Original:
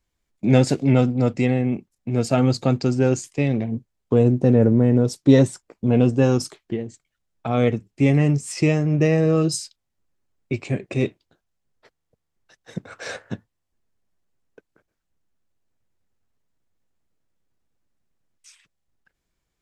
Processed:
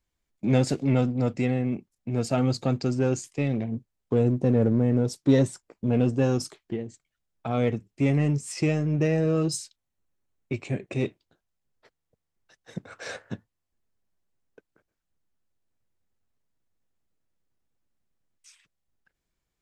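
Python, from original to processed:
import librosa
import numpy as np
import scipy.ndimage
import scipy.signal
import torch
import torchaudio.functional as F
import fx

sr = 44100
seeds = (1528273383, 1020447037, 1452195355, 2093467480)

p1 = fx.notch(x, sr, hz=4900.0, q=9.7, at=(9.55, 10.93))
p2 = np.clip(10.0 ** (20.5 / 20.0) * p1, -1.0, 1.0) / 10.0 ** (20.5 / 20.0)
p3 = p1 + (p2 * librosa.db_to_amplitude(-9.0))
y = p3 * librosa.db_to_amplitude(-7.0)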